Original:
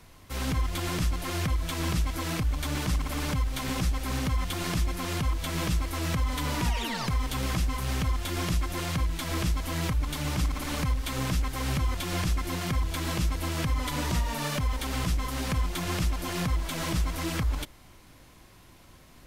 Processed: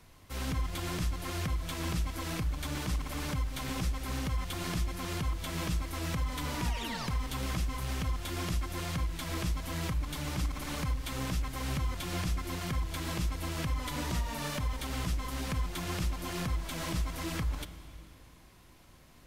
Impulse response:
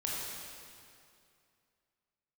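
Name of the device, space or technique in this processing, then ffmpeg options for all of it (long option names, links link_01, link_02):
compressed reverb return: -filter_complex "[0:a]asplit=2[link_01][link_02];[1:a]atrim=start_sample=2205[link_03];[link_02][link_03]afir=irnorm=-1:irlink=0,acompressor=threshold=-23dB:ratio=6,volume=-12dB[link_04];[link_01][link_04]amix=inputs=2:normalize=0,volume=-6.5dB"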